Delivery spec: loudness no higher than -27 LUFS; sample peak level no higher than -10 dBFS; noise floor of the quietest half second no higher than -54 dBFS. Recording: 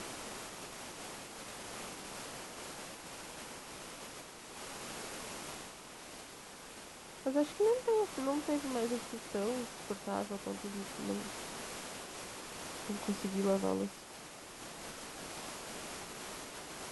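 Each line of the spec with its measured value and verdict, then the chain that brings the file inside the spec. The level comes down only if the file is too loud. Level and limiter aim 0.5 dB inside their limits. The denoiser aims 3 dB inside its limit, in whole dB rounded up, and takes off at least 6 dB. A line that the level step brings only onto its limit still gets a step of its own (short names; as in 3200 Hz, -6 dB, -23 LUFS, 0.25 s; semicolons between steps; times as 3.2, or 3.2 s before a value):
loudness -40.0 LUFS: OK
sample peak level -20.0 dBFS: OK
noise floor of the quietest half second -51 dBFS: fail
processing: denoiser 6 dB, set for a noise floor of -51 dBFS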